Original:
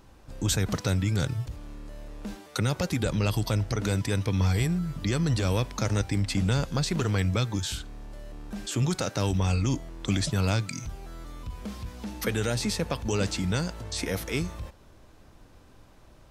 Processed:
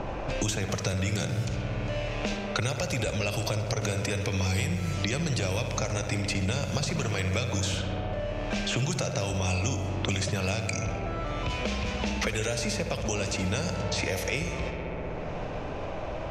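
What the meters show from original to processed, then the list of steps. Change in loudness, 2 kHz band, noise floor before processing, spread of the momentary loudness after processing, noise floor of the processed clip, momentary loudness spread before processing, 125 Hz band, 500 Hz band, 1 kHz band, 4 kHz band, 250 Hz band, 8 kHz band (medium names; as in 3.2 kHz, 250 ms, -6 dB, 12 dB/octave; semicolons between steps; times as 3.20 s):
-1.5 dB, +3.5 dB, -54 dBFS, 5 LU, -34 dBFS, 15 LU, -2.5 dB, +2.0 dB, +2.0 dB, +1.0 dB, -2.5 dB, +1.5 dB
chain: level-controlled noise filter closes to 1 kHz, open at -25.5 dBFS; fifteen-band graphic EQ 250 Hz -4 dB, 630 Hz +9 dB, 2.5 kHz +9 dB, 6.3 kHz +9 dB; compression 2.5:1, threshold -29 dBFS, peak gain reduction 8.5 dB; filtered feedback delay 64 ms, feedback 85%, low-pass 3.4 kHz, level -8.5 dB; three bands compressed up and down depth 100%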